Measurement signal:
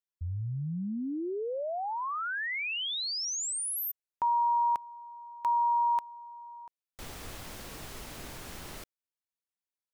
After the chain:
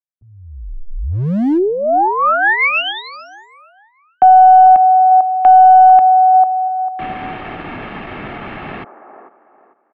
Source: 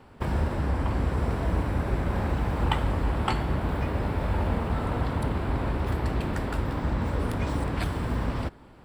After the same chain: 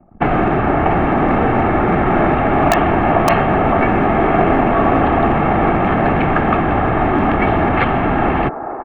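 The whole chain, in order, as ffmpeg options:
ffmpeg -i in.wav -filter_complex "[0:a]anlmdn=0.0398,aecho=1:1:2.1:0.43,highpass=frequency=210:width_type=q:width=0.5412,highpass=frequency=210:width_type=q:width=1.307,lowpass=frequency=2900:width_type=q:width=0.5176,lowpass=frequency=2900:width_type=q:width=0.7071,lowpass=frequency=2900:width_type=q:width=1.932,afreqshift=-200,aeval=exprs='0.299*(cos(1*acos(clip(val(0)/0.299,-1,1)))-cos(1*PI/2))+0.00422*(cos(6*acos(clip(val(0)/0.299,-1,1)))-cos(6*PI/2))':channel_layout=same,acrossover=split=350|1300[link_01][link_02][link_03];[link_01]asoftclip=type=hard:threshold=-34.5dB[link_04];[link_02]aecho=1:1:447|894|1341|1788:0.562|0.163|0.0473|0.0137[link_05];[link_03]aeval=exprs='(mod(15.8*val(0)+1,2)-1)/15.8':channel_layout=same[link_06];[link_04][link_05][link_06]amix=inputs=3:normalize=0,alimiter=level_in=20dB:limit=-1dB:release=50:level=0:latency=1,volume=-1dB" out.wav

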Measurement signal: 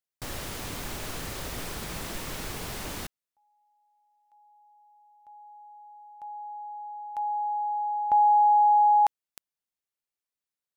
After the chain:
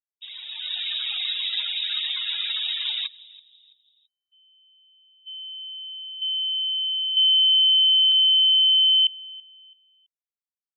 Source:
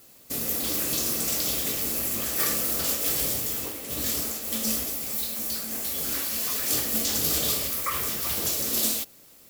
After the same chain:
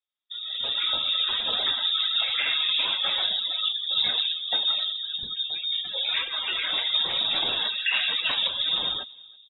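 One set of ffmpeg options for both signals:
ffmpeg -i in.wav -filter_complex "[0:a]highpass=75,aemphasis=mode=reproduction:type=50kf,afftdn=noise_reduction=34:noise_floor=-38,adynamicequalizer=threshold=0.0178:dfrequency=900:dqfactor=2.4:tfrequency=900:tqfactor=2.4:attack=5:release=100:ratio=0.375:range=3:mode=boostabove:tftype=bell,acompressor=threshold=-25dB:ratio=6:attack=1.4:release=171:knee=1:detection=rms,alimiter=level_in=4dB:limit=-24dB:level=0:latency=1:release=180,volume=-4dB,dynaudnorm=framelen=440:gausssize=3:maxgain=13.5dB,asplit=2[link_01][link_02];[link_02]adelay=331,lowpass=frequency=830:poles=1,volume=-19.5dB,asplit=2[link_03][link_04];[link_04]adelay=331,lowpass=frequency=830:poles=1,volume=0.41,asplit=2[link_05][link_06];[link_06]adelay=331,lowpass=frequency=830:poles=1,volume=0.41[link_07];[link_01][link_03][link_05][link_07]amix=inputs=4:normalize=0,lowpass=frequency=3300:width_type=q:width=0.5098,lowpass=frequency=3300:width_type=q:width=0.6013,lowpass=frequency=3300:width_type=q:width=0.9,lowpass=frequency=3300:width_type=q:width=2.563,afreqshift=-3900" out.wav

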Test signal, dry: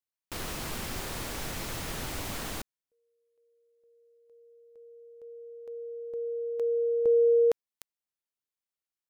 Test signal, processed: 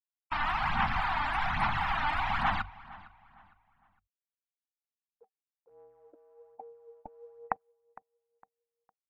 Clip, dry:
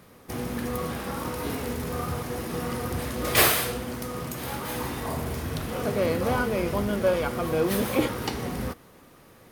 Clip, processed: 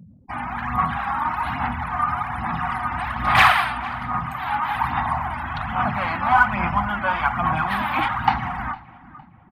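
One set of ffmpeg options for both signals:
ffmpeg -i in.wav -filter_complex "[0:a]bandreject=frequency=470:width=12,bandreject=frequency=46.9:width_type=h:width=4,bandreject=frequency=93.8:width_type=h:width=4,bandreject=frequency=140.7:width_type=h:width=4,acrossover=split=5100[link_01][link_02];[link_02]acompressor=threshold=-44dB:ratio=4:attack=1:release=60[link_03];[link_01][link_03]amix=inputs=2:normalize=0,afftfilt=real='re*gte(hypot(re,im),0.01)':imag='im*gte(hypot(re,im),0.01)':win_size=1024:overlap=0.75,firequalizer=gain_entry='entry(210,0);entry(450,-26);entry(770,14);entry(6300,-11);entry(9100,5);entry(13000,0)':delay=0.05:min_phase=1,areverse,acompressor=mode=upward:threshold=-41dB:ratio=2.5:attack=2.2:release=42:knee=2.83:detection=peak,areverse,volume=6dB,asoftclip=hard,volume=-6dB,aphaser=in_gain=1:out_gain=1:delay=3.4:decay=0.49:speed=1.2:type=sinusoidal,asplit=2[link_04][link_05];[link_05]adelay=458,lowpass=frequency=3200:poles=1,volume=-19.5dB,asplit=2[link_06][link_07];[link_07]adelay=458,lowpass=frequency=3200:poles=1,volume=0.34,asplit=2[link_08][link_09];[link_09]adelay=458,lowpass=frequency=3200:poles=1,volume=0.34[link_10];[link_06][link_08][link_10]amix=inputs=3:normalize=0[link_11];[link_04][link_11]amix=inputs=2:normalize=0" out.wav

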